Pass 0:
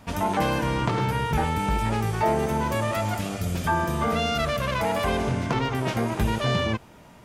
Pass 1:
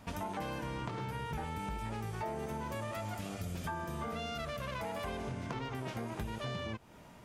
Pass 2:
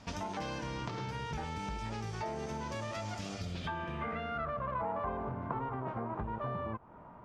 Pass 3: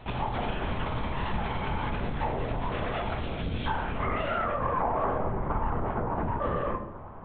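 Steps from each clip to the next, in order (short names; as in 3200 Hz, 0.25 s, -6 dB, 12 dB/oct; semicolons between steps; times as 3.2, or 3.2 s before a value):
compressor 4:1, threshold -32 dBFS, peak gain reduction 11.5 dB; gain -5.5 dB
low-pass sweep 5600 Hz -> 1100 Hz, 3.33–4.59
LPC vocoder at 8 kHz whisper; on a send at -5.5 dB: reverb RT60 1.0 s, pre-delay 5 ms; on the sum: gain +7 dB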